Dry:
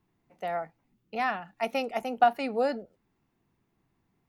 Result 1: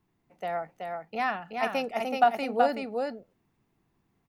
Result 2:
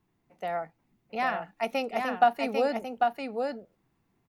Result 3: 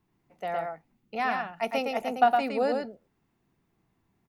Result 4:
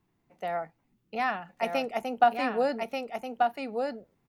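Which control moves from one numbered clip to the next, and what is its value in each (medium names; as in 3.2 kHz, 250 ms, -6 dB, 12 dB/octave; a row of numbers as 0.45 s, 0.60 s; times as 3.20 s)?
delay, time: 377 ms, 796 ms, 112 ms, 1186 ms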